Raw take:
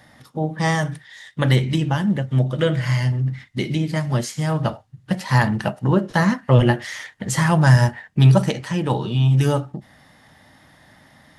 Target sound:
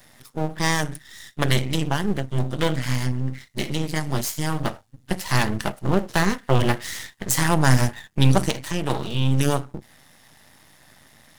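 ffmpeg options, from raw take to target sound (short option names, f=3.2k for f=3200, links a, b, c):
-af "aeval=exprs='max(val(0),0)':c=same,crystalizer=i=2:c=0"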